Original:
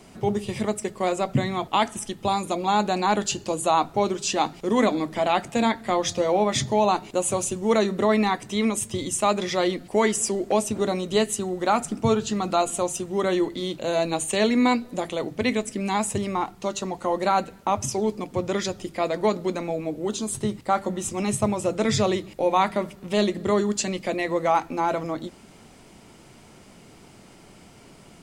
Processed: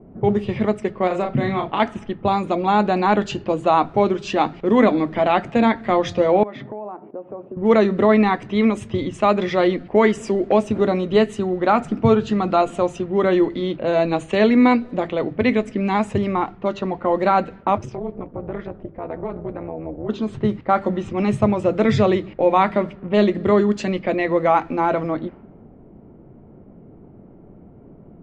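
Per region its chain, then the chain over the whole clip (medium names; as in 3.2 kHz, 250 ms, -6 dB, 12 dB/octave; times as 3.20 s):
1.07–1.80 s: compression, threshold -22 dBFS + doubling 35 ms -4 dB
6.43–7.57 s: high-pass 280 Hz + tape spacing loss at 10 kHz 34 dB + compression 4:1, threshold -35 dBFS
17.78–20.09 s: compression 3:1, threshold -28 dBFS + AM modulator 240 Hz, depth 75%
whole clip: level-controlled noise filter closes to 460 Hz, open at -21.5 dBFS; low-pass 2.3 kHz 12 dB/octave; peaking EQ 900 Hz -3 dB; trim +6.5 dB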